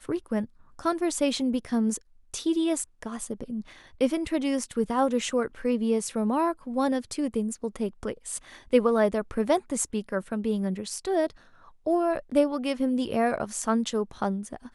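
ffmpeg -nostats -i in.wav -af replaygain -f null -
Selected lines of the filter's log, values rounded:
track_gain = +7.7 dB
track_peak = 0.270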